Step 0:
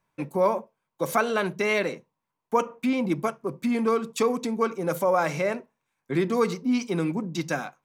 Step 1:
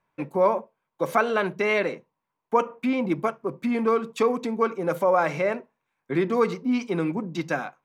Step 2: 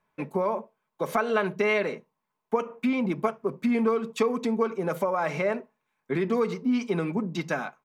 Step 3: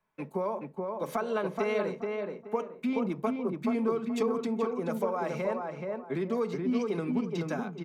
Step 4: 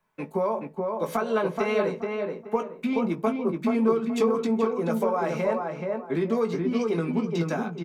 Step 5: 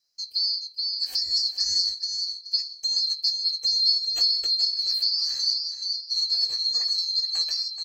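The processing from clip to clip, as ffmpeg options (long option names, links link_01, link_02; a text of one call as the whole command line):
ffmpeg -i in.wav -af "bass=frequency=250:gain=-4,treble=frequency=4000:gain=-11,volume=2dB" out.wav
ffmpeg -i in.wav -af "acompressor=threshold=-22dB:ratio=6,aecho=1:1:4.7:0.38" out.wav
ffmpeg -i in.wav -filter_complex "[0:a]acrossover=split=180|1400|2800[link_01][link_02][link_03][link_04];[link_03]acompressor=threshold=-48dB:ratio=6[link_05];[link_01][link_02][link_05][link_04]amix=inputs=4:normalize=0,asplit=2[link_06][link_07];[link_07]adelay=427,lowpass=frequency=1900:poles=1,volume=-3dB,asplit=2[link_08][link_09];[link_09]adelay=427,lowpass=frequency=1900:poles=1,volume=0.28,asplit=2[link_10][link_11];[link_11]adelay=427,lowpass=frequency=1900:poles=1,volume=0.28,asplit=2[link_12][link_13];[link_13]adelay=427,lowpass=frequency=1900:poles=1,volume=0.28[link_14];[link_06][link_08][link_10][link_12][link_14]amix=inputs=5:normalize=0,volume=-5dB" out.wav
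ffmpeg -i in.wav -filter_complex "[0:a]asplit=2[link_01][link_02];[link_02]adelay=18,volume=-7dB[link_03];[link_01][link_03]amix=inputs=2:normalize=0,volume=4.5dB" out.wav
ffmpeg -i in.wav -af "afftfilt=real='real(if(lt(b,736),b+184*(1-2*mod(floor(b/184),2)),b),0)':imag='imag(if(lt(b,736),b+184*(1-2*mod(floor(b/184),2)),b),0)':win_size=2048:overlap=0.75" out.wav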